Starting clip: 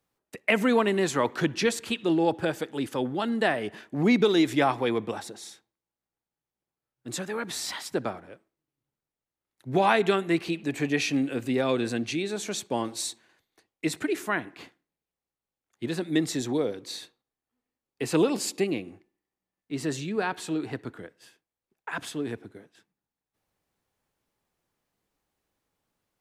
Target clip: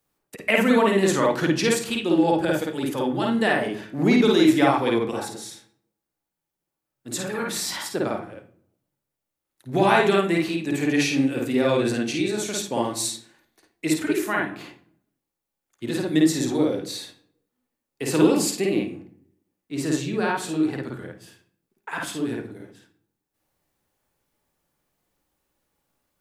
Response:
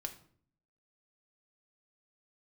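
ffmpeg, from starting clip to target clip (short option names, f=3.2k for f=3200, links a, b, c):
-filter_complex "[0:a]highshelf=f=6.9k:g=9,asplit=2[a][b];[1:a]atrim=start_sample=2205,highshelf=f=4.4k:g=-11.5,adelay=52[c];[b][c]afir=irnorm=-1:irlink=0,volume=4.5dB[d];[a][d]amix=inputs=2:normalize=0"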